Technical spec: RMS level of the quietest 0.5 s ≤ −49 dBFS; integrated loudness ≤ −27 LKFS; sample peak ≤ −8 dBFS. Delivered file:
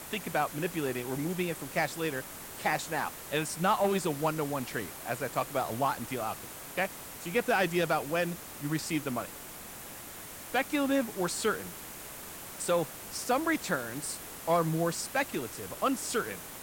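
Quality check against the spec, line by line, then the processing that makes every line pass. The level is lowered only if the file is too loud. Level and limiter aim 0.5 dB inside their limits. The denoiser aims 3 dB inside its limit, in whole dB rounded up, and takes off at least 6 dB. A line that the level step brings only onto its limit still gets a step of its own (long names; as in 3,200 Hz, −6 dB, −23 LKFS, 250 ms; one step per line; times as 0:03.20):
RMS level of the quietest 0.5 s −45 dBFS: out of spec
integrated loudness −32.0 LKFS: in spec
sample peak −14.0 dBFS: in spec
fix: broadband denoise 7 dB, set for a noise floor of −45 dBFS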